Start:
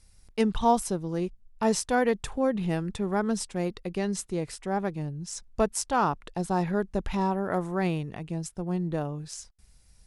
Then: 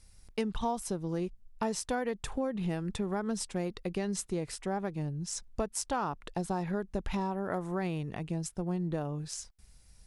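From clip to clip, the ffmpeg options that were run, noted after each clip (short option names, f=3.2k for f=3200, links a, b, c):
-af "acompressor=threshold=-29dB:ratio=6"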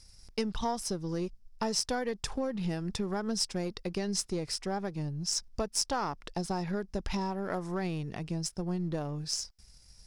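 -af "aeval=exprs='if(lt(val(0),0),0.708*val(0),val(0))':c=same,equalizer=f=5.2k:t=o:w=0.48:g=12.5,volume=1.5dB"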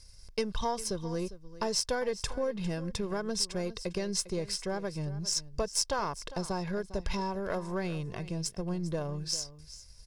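-af "aecho=1:1:1.9:0.45,aecho=1:1:402:0.158"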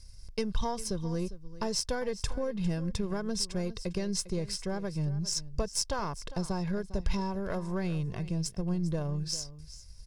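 -af "bass=f=250:g=8,treble=f=4k:g=1,volume=-2.5dB"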